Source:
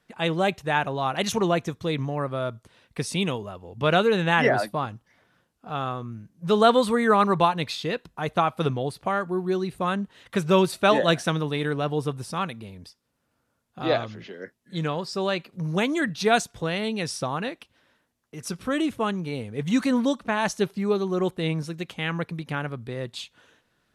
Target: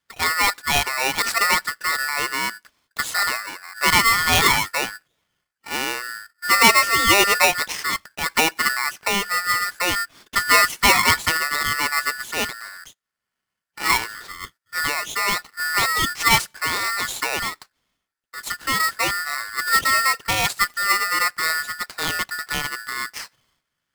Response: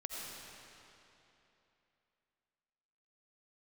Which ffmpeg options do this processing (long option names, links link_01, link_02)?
-af "agate=range=-13dB:threshold=-49dB:ratio=16:detection=peak,aeval=exprs='val(0)*sgn(sin(2*PI*1600*n/s))':channel_layout=same,volume=3.5dB"